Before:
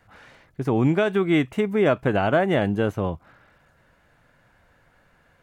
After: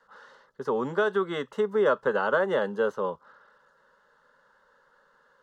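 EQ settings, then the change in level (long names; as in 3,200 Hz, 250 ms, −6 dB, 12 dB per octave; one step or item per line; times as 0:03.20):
three-way crossover with the lows and the highs turned down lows −20 dB, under 340 Hz, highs −18 dB, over 6,000 Hz
phaser with its sweep stopped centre 470 Hz, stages 8
+2.5 dB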